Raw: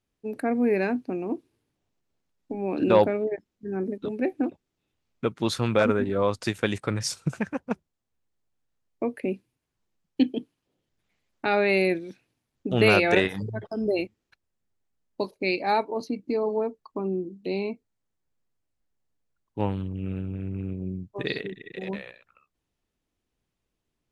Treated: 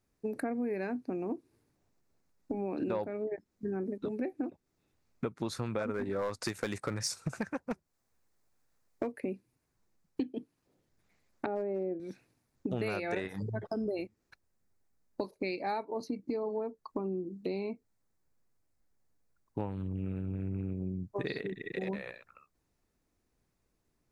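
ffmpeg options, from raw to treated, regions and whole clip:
-filter_complex "[0:a]asettb=1/sr,asplit=3[s0][s1][s2];[s0]atrim=end=5.944[s3];[s1]atrim=start=5.94:end=9.12,asetpts=PTS-STARTPTS,afade=t=in:d=0.004:c=qsin,afade=t=out:st=3.176:d=0.004:c=qsin,acontrast=31,asoftclip=type=hard:threshold=0.2,lowshelf=f=410:g=-6[s4];[s2]atrim=start=9.116[s5];[s3][s4]acrossfade=d=0.004:c1=hsin:c2=qsin[s6];[s6][s5]acrossfade=d=0.004:c1=qsin:c2=hsin,asettb=1/sr,asplit=3[s7][s8][s9];[s7]atrim=end=11.464[s10];[s8]atrim=start=11.46:end=12,asetpts=PTS-STARTPTS,afade=t=in:d=0.004:c=qsin,afade=t=out:st=0.536:d=0.004:c=qsin,asuperpass=centerf=360:order=4:qfactor=0.69,asoftclip=type=hard:threshold=0.15[s11];[s9]atrim=start=11.996[s12];[s10][s11]acrossfade=d=0.004:c1=hsin:c2=qsin[s13];[s13][s12]acrossfade=d=0.004:c1=qsin:c2=hsin,equalizer=f=3100:t=o:w=0.52:g=-9.5,acompressor=threshold=0.0158:ratio=6,volume=1.5"

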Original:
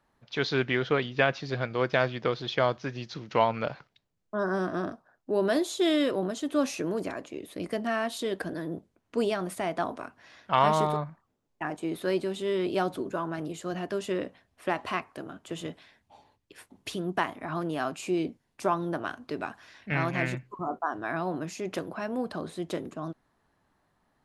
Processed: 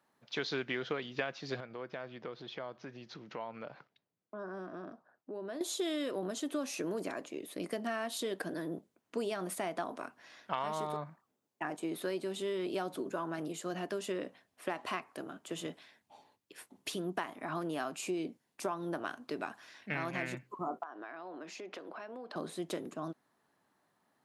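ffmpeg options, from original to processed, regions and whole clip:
-filter_complex "[0:a]asettb=1/sr,asplit=3[s0][s1][s2];[s0]atrim=end=1.604[s3];[s1]atrim=start=1.6:end=5.61,asetpts=PTS-STARTPTS,afade=t=in:d=0.004:c=qsin,afade=t=out:st=4.006:d=0.004:c=qsin,lowpass=f=2000:p=1,acompressor=threshold=0.00891:ratio=2.5:attack=3.2:release=140:knee=1:detection=peak[s4];[s2]atrim=start=5.606[s5];[s3][s4]acrossfade=d=0.004:c1=hsin:c2=qsin[s6];[s6][s5]acrossfade=d=0.004:c1=qsin:c2=hsin,asettb=1/sr,asplit=3[s7][s8][s9];[s7]atrim=end=20.834[s10];[s8]atrim=start=20.83:end=22.36,asetpts=PTS-STARTPTS,afade=t=in:d=0.004:c=qsin,afade=t=out:st=1.526:d=0.004:c=qsin,acrossover=split=260 5300:gain=0.0794 1 0.0891[s11][s12][s13];[s11][s12][s13]amix=inputs=3:normalize=0,acompressor=threshold=0.0126:ratio=8:attack=3.2:release=140:knee=1:detection=peak[s14];[s9]atrim=start=22.356[s15];[s10][s14]acrossfade=d=0.004:c1=hsin:c2=qsin[s16];[s16][s15]acrossfade=d=0.004:c1=qsin:c2=hsin,highpass=180,highshelf=f=7300:g=6.5,acompressor=threshold=0.0355:ratio=6,volume=0.708"

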